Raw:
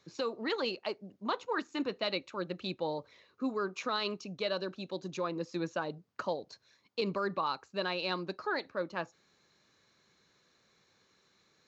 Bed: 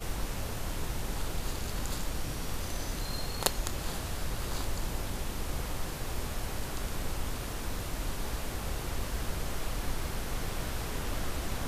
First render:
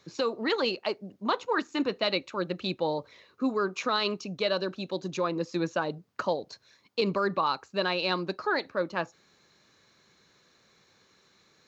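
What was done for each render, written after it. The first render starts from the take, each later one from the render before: gain +6 dB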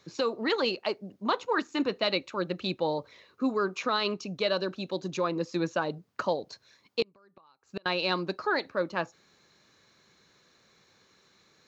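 3.78–4.2 air absorption 51 m; 7.02–7.86 flipped gate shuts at -21 dBFS, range -34 dB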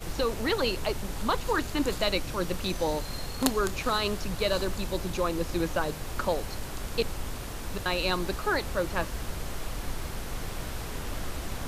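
add bed -0.5 dB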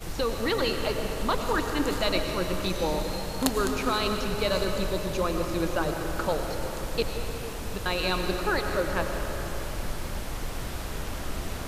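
digital reverb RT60 3.8 s, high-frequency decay 0.55×, pre-delay 65 ms, DRR 3.5 dB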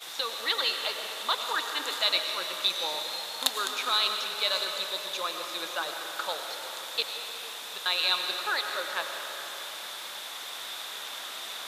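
HPF 930 Hz 12 dB/oct; bell 3600 Hz +14.5 dB 0.25 oct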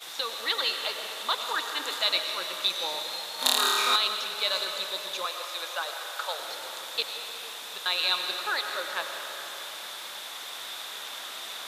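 3.36–3.96 flutter echo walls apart 4.7 m, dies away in 1.3 s; 5.25–6.39 HPF 450 Hz 24 dB/oct

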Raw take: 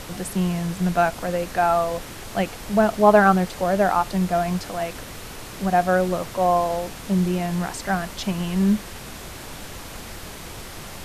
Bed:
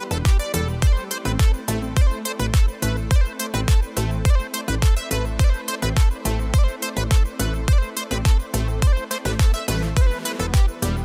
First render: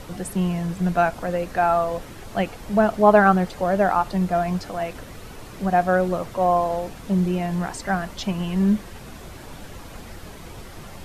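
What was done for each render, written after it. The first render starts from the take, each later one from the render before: denoiser 8 dB, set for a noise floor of -38 dBFS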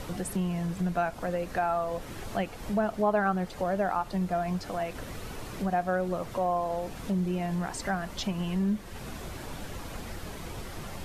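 compressor 2:1, threshold -32 dBFS, peak gain reduction 12.5 dB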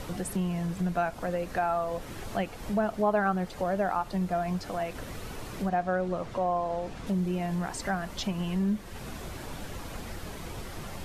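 5.69–7.07 air absorption 54 m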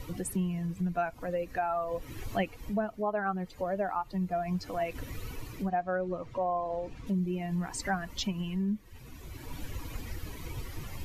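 per-bin expansion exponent 1.5; vocal rider within 5 dB 0.5 s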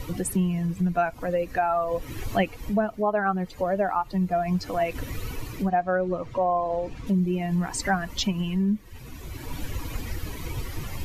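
gain +7 dB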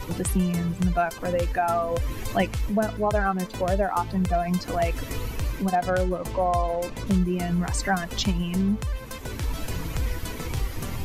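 add bed -12.5 dB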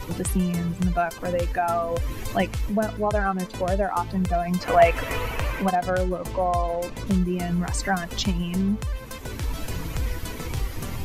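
3.07–4.01 brick-wall FIR low-pass 13000 Hz; 4.61–5.71 band shelf 1200 Hz +10 dB 2.9 oct

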